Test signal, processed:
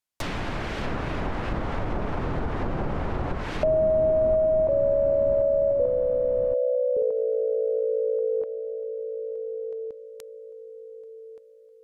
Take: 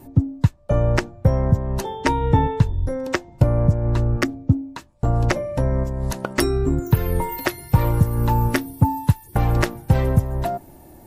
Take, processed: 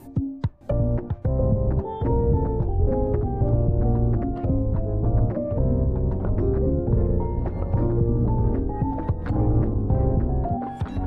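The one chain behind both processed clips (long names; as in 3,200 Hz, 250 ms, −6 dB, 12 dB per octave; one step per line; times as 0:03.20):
brickwall limiter −14.5 dBFS
delay with pitch and tempo change per echo 610 ms, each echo −2 semitones, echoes 3
treble cut that deepens with the level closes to 610 Hz, closed at −19.5 dBFS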